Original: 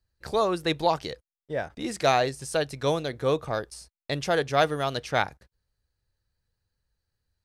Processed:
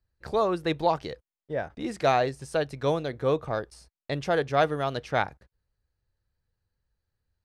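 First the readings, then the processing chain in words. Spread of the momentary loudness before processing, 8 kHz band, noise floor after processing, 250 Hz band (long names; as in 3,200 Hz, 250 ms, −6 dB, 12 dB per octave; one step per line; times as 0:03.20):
10 LU, −9.0 dB, below −85 dBFS, 0.0 dB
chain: high-shelf EQ 3,600 Hz −11 dB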